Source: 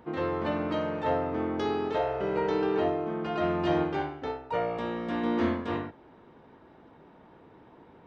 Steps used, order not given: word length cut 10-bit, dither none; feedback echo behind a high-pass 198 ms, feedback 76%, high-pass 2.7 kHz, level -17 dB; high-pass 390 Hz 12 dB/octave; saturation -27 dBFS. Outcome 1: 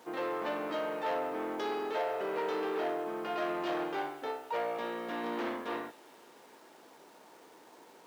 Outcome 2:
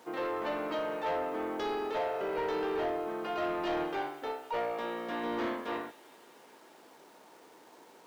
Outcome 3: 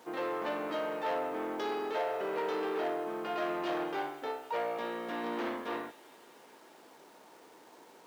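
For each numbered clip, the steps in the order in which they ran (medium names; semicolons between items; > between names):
saturation > feedback echo behind a high-pass > word length cut > high-pass; feedback echo behind a high-pass > word length cut > high-pass > saturation; feedback echo behind a high-pass > saturation > word length cut > high-pass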